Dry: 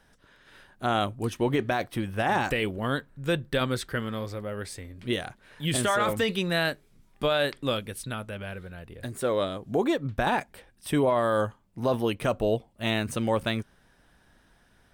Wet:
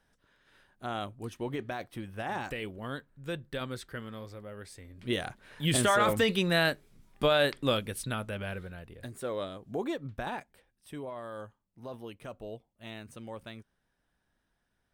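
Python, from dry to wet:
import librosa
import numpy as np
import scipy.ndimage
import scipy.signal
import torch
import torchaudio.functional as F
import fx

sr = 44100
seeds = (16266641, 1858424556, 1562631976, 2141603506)

y = fx.gain(x, sr, db=fx.line((4.73, -10.0), (5.27, 0.0), (8.58, 0.0), (9.2, -8.5), (10.04, -8.5), (10.9, -17.0)))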